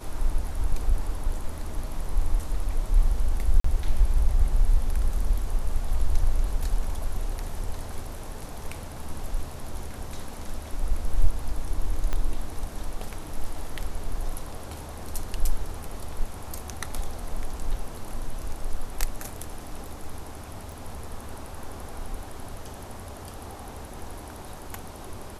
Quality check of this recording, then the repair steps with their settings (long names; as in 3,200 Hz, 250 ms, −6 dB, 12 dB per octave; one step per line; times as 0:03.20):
0:03.60–0:03.64: drop-out 44 ms
0:12.13: click −15 dBFS
0:20.72: click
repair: click removal
repair the gap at 0:03.60, 44 ms